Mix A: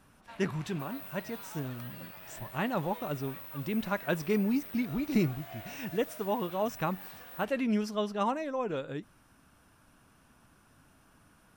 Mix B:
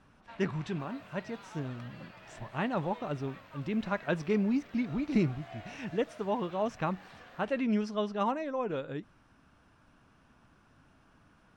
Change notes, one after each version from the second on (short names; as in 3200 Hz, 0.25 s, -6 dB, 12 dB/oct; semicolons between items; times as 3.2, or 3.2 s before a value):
master: add air absorption 99 m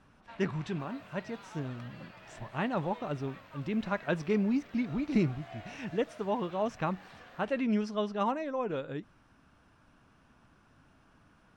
none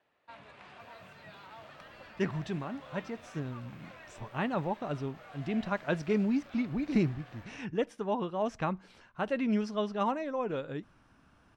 speech: entry +1.80 s